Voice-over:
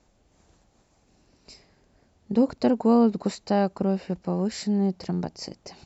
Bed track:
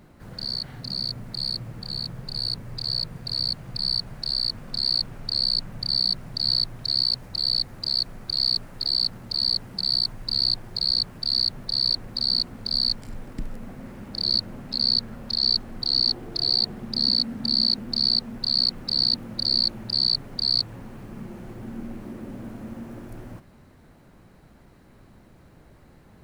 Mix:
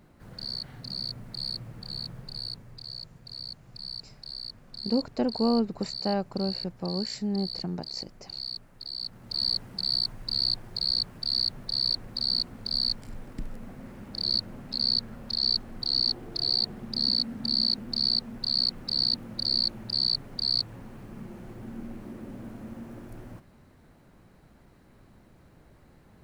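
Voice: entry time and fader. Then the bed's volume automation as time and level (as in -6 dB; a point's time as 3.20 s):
2.55 s, -5.5 dB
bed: 2.16 s -5.5 dB
2.93 s -13.5 dB
8.95 s -13.5 dB
9.39 s -4 dB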